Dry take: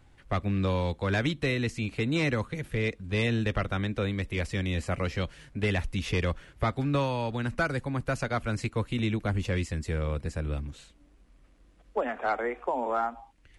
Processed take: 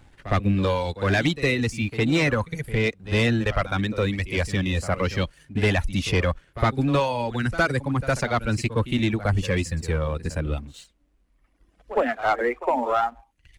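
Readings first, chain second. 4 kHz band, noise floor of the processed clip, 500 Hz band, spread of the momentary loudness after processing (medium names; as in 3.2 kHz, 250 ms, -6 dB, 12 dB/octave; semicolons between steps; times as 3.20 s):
+6.5 dB, -65 dBFS, +6.0 dB, 6 LU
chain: reverb removal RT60 1.8 s; waveshaping leveller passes 1; pre-echo 60 ms -14 dB; trim +5 dB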